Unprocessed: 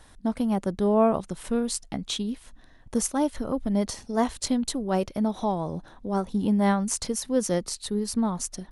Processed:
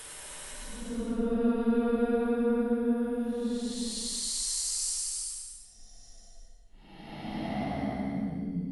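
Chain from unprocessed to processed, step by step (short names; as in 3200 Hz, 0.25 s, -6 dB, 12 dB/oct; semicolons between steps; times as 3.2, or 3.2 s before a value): Paulstretch 15×, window 0.10 s, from 1.43; gain -2.5 dB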